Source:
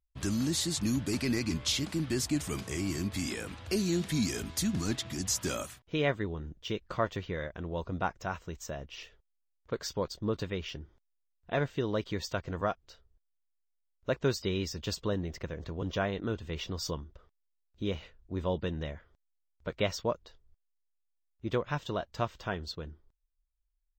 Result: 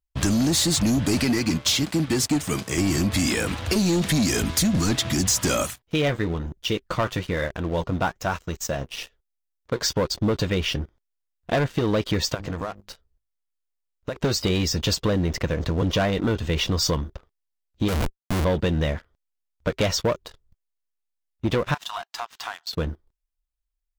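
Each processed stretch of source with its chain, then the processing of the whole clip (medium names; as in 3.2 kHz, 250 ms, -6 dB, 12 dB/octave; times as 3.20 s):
1.24–2.78 s: high-pass 95 Hz + upward expansion, over -41 dBFS
5.70–9.82 s: treble shelf 6.8 kHz +6 dB + flange 1.1 Hz, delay 0.3 ms, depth 8.3 ms, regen +73%
12.34–14.16 s: hum notches 50/100/150/200/250/300/350 Hz + compression 16:1, threshold -40 dBFS
17.88–18.45 s: treble shelf 3.3 kHz -6 dB + Schmitt trigger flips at -48.5 dBFS
21.74–22.73 s: brick-wall FIR high-pass 670 Hz + compression, threshold -43 dBFS
whole clip: waveshaping leveller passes 3; compression, threshold -23 dBFS; band-stop 390 Hz, Q 12; trim +4.5 dB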